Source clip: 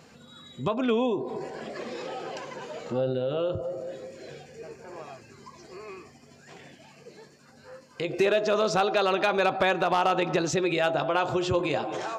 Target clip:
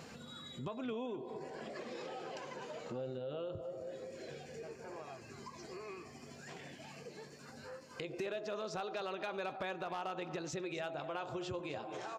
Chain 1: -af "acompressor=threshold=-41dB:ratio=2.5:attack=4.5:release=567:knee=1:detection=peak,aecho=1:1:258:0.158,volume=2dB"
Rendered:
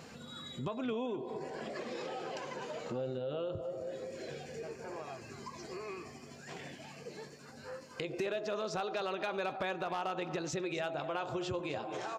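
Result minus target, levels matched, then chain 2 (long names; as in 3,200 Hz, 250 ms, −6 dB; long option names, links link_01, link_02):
downward compressor: peak gain reduction −4 dB
-af "acompressor=threshold=-48dB:ratio=2.5:attack=4.5:release=567:knee=1:detection=peak,aecho=1:1:258:0.158,volume=2dB"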